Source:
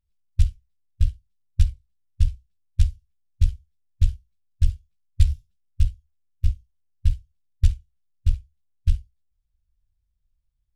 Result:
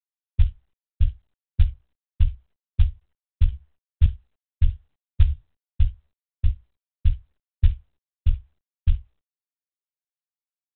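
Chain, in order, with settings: tracing distortion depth 0.042 ms; gate -49 dBFS, range -27 dB; 0.44–1.6 dynamic EQ 320 Hz, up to -5 dB, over -52 dBFS, Q 2.9; 3.51–4.06 doubler 15 ms -3 dB; G.726 32 kbps 8000 Hz

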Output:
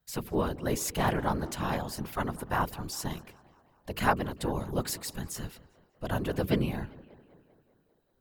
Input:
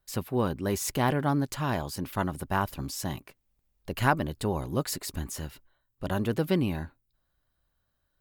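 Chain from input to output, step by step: bell 270 Hz -8 dB 0.33 oct; de-hum 56.4 Hz, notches 7; tape echo 0.197 s, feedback 67%, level -19.5 dB, low-pass 3300 Hz; whisperiser; gain -1 dB

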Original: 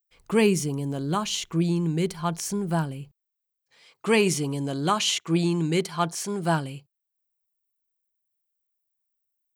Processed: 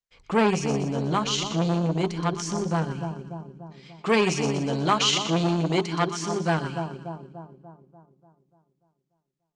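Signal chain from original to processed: LPF 6600 Hz 24 dB/oct; notches 50/100/150/200/250/300/350/400 Hz; split-band echo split 1000 Hz, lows 0.293 s, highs 0.122 s, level -8.5 dB; transient shaper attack -1 dB, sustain -5 dB; core saturation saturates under 850 Hz; gain +3.5 dB

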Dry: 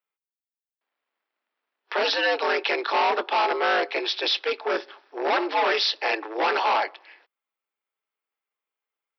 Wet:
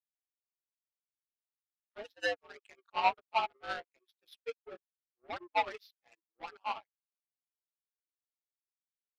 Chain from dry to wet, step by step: per-bin expansion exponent 2; bell 4300 Hz -5 dB 2.1 oct; power-law curve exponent 2; in parallel at -8 dB: crossover distortion -46 dBFS; on the sum: upward expander 2.5:1, over -44 dBFS; gain +1.5 dB

